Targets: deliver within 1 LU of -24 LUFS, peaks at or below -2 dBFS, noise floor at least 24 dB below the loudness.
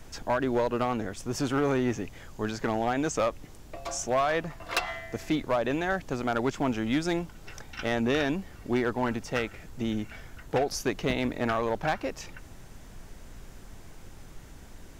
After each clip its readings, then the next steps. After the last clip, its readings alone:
clipped 1.0%; flat tops at -19.5 dBFS; noise floor -48 dBFS; noise floor target -54 dBFS; loudness -29.5 LUFS; peak -19.5 dBFS; loudness target -24.0 LUFS
-> clip repair -19.5 dBFS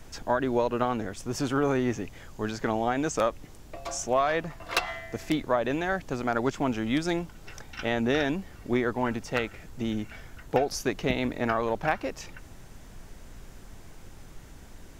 clipped 0.0%; noise floor -48 dBFS; noise floor target -53 dBFS
-> noise print and reduce 6 dB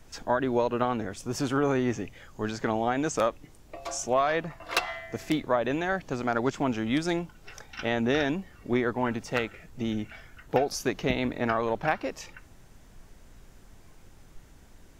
noise floor -54 dBFS; loudness -29.0 LUFS; peak -10.5 dBFS; loudness target -24.0 LUFS
-> gain +5 dB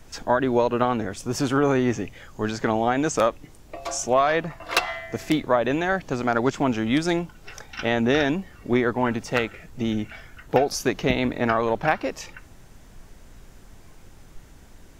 loudness -24.0 LUFS; peak -5.5 dBFS; noise floor -49 dBFS

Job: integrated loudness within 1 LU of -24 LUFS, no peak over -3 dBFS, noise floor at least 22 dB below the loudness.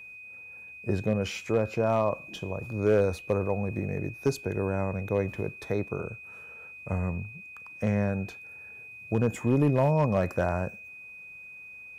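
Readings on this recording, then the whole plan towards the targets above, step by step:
clipped 0.3%; flat tops at -15.5 dBFS; steady tone 2500 Hz; tone level -43 dBFS; loudness -29.0 LUFS; peak -15.5 dBFS; loudness target -24.0 LUFS
-> clip repair -15.5 dBFS; notch 2500 Hz, Q 30; gain +5 dB

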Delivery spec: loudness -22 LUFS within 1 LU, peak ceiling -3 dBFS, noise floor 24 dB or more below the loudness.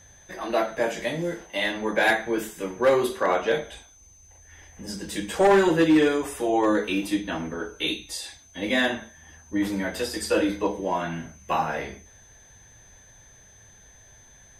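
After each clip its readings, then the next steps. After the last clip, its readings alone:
clipped 0.5%; flat tops at -13.0 dBFS; steady tone 6200 Hz; tone level -52 dBFS; loudness -25.0 LUFS; peak -13.0 dBFS; loudness target -22.0 LUFS
-> clip repair -13 dBFS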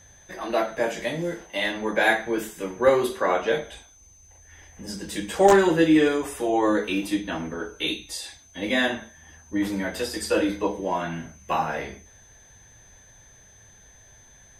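clipped 0.0%; steady tone 6200 Hz; tone level -52 dBFS
-> notch 6200 Hz, Q 30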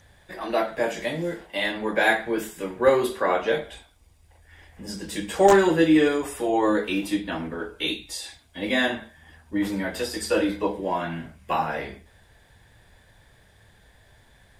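steady tone none; loudness -24.5 LUFS; peak -4.0 dBFS; loudness target -22.0 LUFS
-> gain +2.5 dB; limiter -3 dBFS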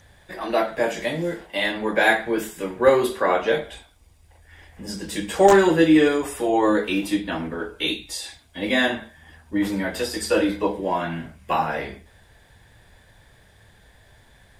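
loudness -22.0 LUFS; peak -3.0 dBFS; noise floor -55 dBFS

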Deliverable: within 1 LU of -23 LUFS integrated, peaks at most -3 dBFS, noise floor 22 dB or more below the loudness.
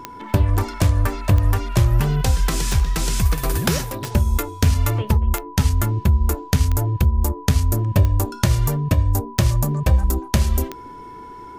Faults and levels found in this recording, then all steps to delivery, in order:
clicks 9; steady tone 990 Hz; tone level -36 dBFS; loudness -20.0 LUFS; peak -1.5 dBFS; loudness target -23.0 LUFS
-> de-click; notch 990 Hz, Q 30; gain -3 dB

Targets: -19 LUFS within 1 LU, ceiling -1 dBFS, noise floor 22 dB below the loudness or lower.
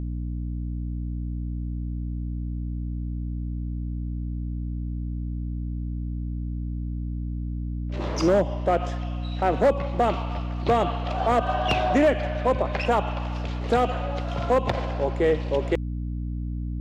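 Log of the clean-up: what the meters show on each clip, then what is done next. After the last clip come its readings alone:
clipped 0.5%; flat tops at -13.5 dBFS; hum 60 Hz; harmonics up to 300 Hz; hum level -27 dBFS; loudness -27.0 LUFS; peak -13.5 dBFS; loudness target -19.0 LUFS
-> clip repair -13.5 dBFS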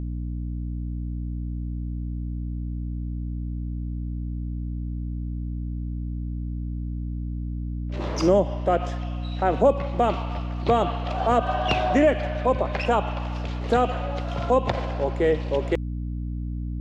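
clipped 0.0%; hum 60 Hz; harmonics up to 300 Hz; hum level -27 dBFS
-> notches 60/120/180/240/300 Hz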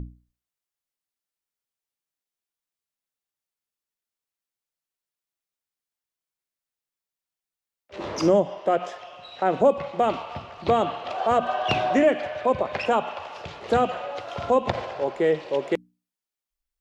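hum none; loudness -24.5 LUFS; peak -8.0 dBFS; loudness target -19.0 LUFS
-> gain +5.5 dB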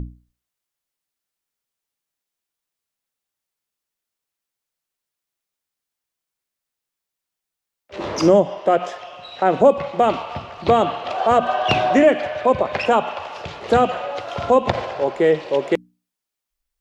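loudness -19.0 LUFS; peak -2.5 dBFS; noise floor -85 dBFS

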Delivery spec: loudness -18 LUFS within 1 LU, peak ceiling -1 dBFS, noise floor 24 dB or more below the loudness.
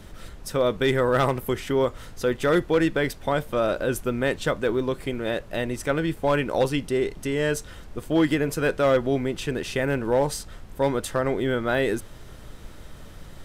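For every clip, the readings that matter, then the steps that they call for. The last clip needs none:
clipped 0.4%; flat tops at -13.5 dBFS; noise floor -44 dBFS; noise floor target -49 dBFS; loudness -25.0 LUFS; peak -13.5 dBFS; loudness target -18.0 LUFS
-> clip repair -13.5 dBFS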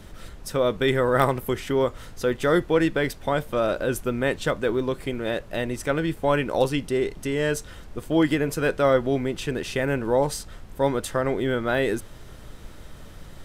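clipped 0.0%; noise floor -44 dBFS; noise floor target -49 dBFS
-> noise print and reduce 6 dB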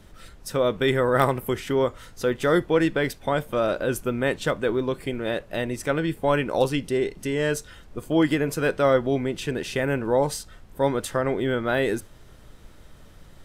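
noise floor -49 dBFS; loudness -24.5 LUFS; peak -6.0 dBFS; loudness target -18.0 LUFS
-> gain +6.5 dB; limiter -1 dBFS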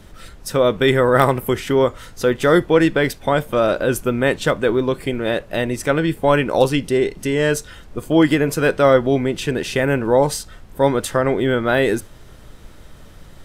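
loudness -18.0 LUFS; peak -1.0 dBFS; noise floor -42 dBFS

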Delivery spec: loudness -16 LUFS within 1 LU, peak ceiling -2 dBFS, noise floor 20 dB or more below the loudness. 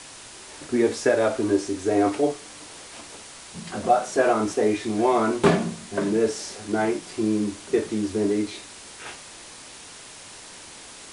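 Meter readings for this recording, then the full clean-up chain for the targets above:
noise floor -43 dBFS; noise floor target -44 dBFS; loudness -23.5 LUFS; peak -5.5 dBFS; loudness target -16.0 LUFS
-> noise print and reduce 6 dB; gain +7.5 dB; limiter -2 dBFS

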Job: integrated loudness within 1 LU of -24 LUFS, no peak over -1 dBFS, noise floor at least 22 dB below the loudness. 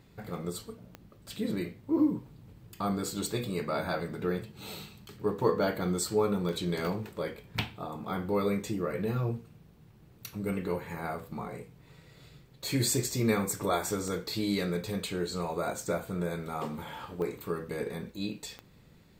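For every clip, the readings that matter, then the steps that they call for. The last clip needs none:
clicks 6; loudness -32.5 LUFS; peak -12.5 dBFS; loudness target -24.0 LUFS
-> de-click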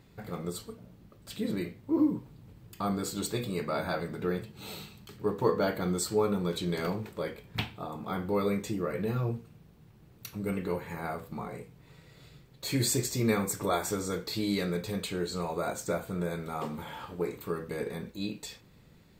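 clicks 0; loudness -32.5 LUFS; peak -13.5 dBFS; loudness target -24.0 LUFS
-> gain +8.5 dB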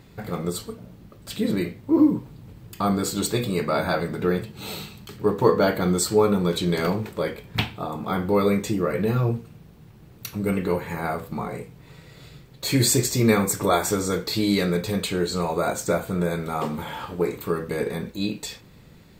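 loudness -24.0 LUFS; peak -5.0 dBFS; noise floor -49 dBFS

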